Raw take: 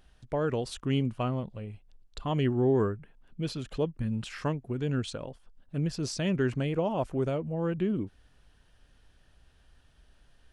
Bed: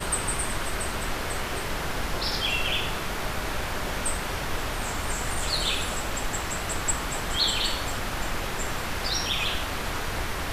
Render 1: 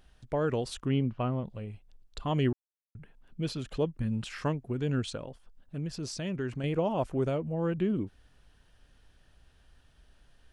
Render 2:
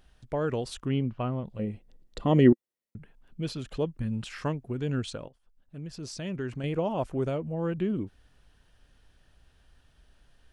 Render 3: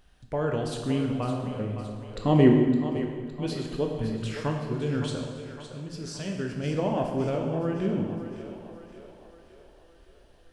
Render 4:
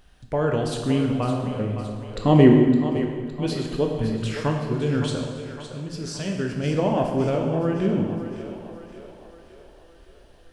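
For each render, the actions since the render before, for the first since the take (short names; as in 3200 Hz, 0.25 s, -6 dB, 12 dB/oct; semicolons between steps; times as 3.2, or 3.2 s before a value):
0.88–1.45 air absorption 250 m; 2.53–2.95 mute; 5.2–6.64 compressor 1.5:1, threshold -40 dBFS
1.59–2.98 small resonant body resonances 230/340/490/1900 Hz, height 12 dB, ringing for 30 ms; 5.28–6.33 fade in, from -15.5 dB
on a send: split-band echo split 370 Hz, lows 0.245 s, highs 0.562 s, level -10.5 dB; on the sum: plate-style reverb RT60 1.5 s, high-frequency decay 0.85×, DRR 1.5 dB
gain +5 dB; limiter -3 dBFS, peak gain reduction 1.5 dB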